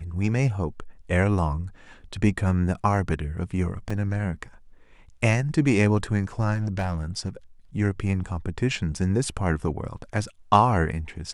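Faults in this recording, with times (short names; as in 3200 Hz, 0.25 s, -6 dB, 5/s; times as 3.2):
3.9 gap 4.5 ms
6.55–7.28 clipped -21 dBFS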